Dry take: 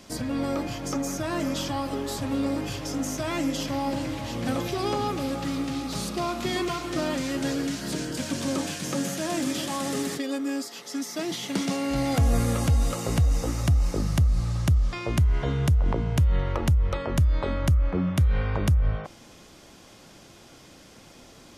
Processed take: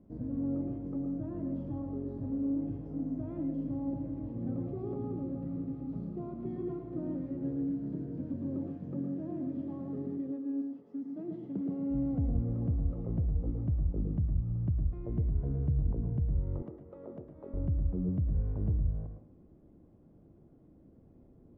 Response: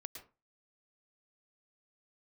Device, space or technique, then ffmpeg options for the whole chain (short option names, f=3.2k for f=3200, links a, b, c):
television next door: -filter_complex "[0:a]acompressor=threshold=-22dB:ratio=6,lowpass=320[a];[1:a]atrim=start_sample=2205[b];[a][b]afir=irnorm=-1:irlink=0,asettb=1/sr,asplit=3[c][d][e];[c]atrim=end=16.624[f];[d]atrim=start=16.62:end=17.54,asetpts=PTS-STARTPTS,afade=t=in:d=0.004:c=qsin,afade=t=out:st=0.916:d=0.004:c=qsin,highpass=350[g];[e]atrim=start=17.536[h];[f][g]acrossfade=d=0.004:c1=hsin:c2=qsin[i];[i][h]acrossfade=d=0.004:c1=qsin:c2=hsin"